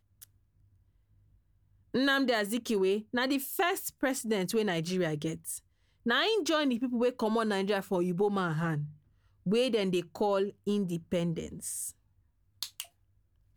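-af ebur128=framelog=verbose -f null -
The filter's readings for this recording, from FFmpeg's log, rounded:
Integrated loudness:
  I:         -30.8 LUFS
  Threshold: -41.6 LUFS
Loudness range:
  LRA:         2.9 LU
  Threshold: -51.2 LUFS
  LRA low:   -32.7 LUFS
  LRA high:  -29.8 LUFS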